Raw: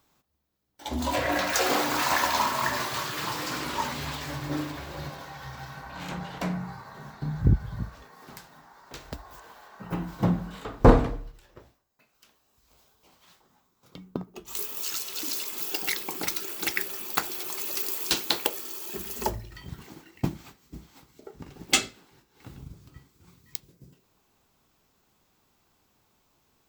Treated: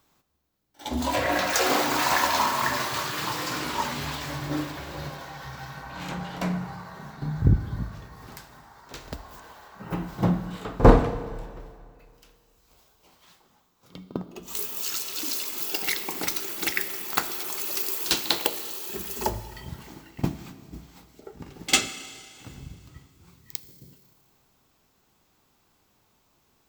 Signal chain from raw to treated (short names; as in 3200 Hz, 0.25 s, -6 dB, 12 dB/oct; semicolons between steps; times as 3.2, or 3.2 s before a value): pre-echo 49 ms -15.5 dB; Schroeder reverb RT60 2.2 s, combs from 26 ms, DRR 12 dB; gain +1.5 dB